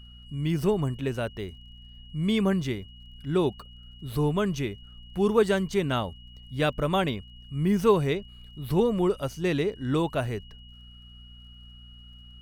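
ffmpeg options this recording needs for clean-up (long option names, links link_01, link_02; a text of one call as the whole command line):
ffmpeg -i in.wav -af "adeclick=threshold=4,bandreject=frequency=60.1:width_type=h:width=4,bandreject=frequency=120.2:width_type=h:width=4,bandreject=frequency=180.3:width_type=h:width=4,bandreject=frequency=240.4:width_type=h:width=4,bandreject=frequency=2900:width=30" out.wav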